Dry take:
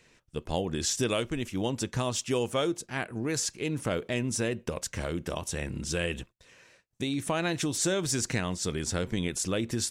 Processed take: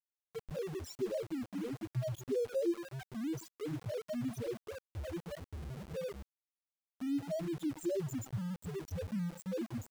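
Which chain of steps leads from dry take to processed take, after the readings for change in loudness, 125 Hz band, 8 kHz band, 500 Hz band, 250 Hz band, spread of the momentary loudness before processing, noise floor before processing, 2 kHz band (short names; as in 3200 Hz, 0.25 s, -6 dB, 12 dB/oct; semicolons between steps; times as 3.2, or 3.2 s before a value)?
-9.0 dB, -7.5 dB, -22.0 dB, -6.5 dB, -6.5 dB, 6 LU, -65 dBFS, -18.5 dB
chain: split-band echo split 520 Hz, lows 0.112 s, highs 0.28 s, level -12.5 dB; loudest bins only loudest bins 1; sample gate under -46 dBFS; gain +2 dB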